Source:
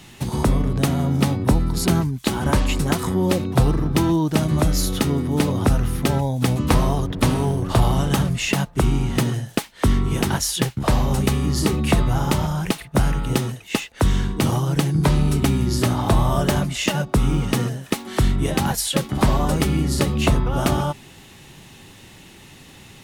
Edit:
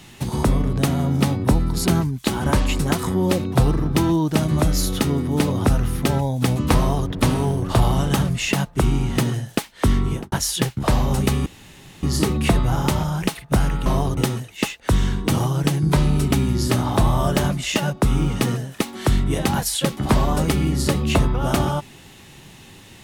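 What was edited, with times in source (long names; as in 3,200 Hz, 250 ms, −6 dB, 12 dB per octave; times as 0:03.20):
0:06.78–0:07.09: duplicate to 0:13.29
0:10.06–0:10.32: fade out and dull
0:11.46: splice in room tone 0.57 s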